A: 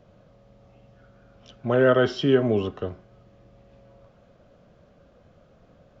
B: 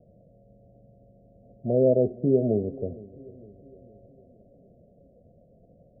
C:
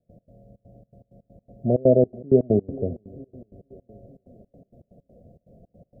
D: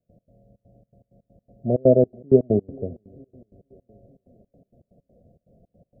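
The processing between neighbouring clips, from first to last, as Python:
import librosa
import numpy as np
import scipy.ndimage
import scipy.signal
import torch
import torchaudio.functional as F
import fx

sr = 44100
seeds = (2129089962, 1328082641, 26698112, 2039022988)

y1 = scipy.signal.sosfilt(scipy.signal.cheby1(6, 3, 710.0, 'lowpass', fs=sr, output='sos'), x)
y1 = fx.echo_wet_lowpass(y1, sr, ms=461, feedback_pct=52, hz=510.0, wet_db=-19)
y2 = fx.peak_eq(y1, sr, hz=500.0, db=-3.0, octaves=0.77)
y2 = fx.step_gate(y2, sr, bpm=162, pattern='.x.xxx.xx.x.x', floor_db=-24.0, edge_ms=4.5)
y2 = F.gain(torch.from_numpy(y2), 6.5).numpy()
y3 = fx.upward_expand(y2, sr, threshold_db=-27.0, expansion=1.5)
y3 = F.gain(torch.from_numpy(y3), 2.5).numpy()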